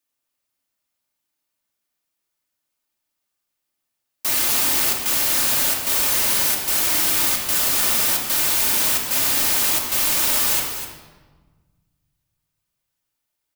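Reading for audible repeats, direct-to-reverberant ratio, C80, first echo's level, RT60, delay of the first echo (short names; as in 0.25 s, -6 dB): 1, -2.0 dB, 4.5 dB, -8.5 dB, 1.3 s, 0.252 s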